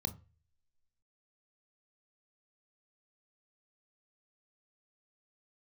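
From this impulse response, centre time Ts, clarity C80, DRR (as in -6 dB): 6 ms, 23.5 dB, 9.0 dB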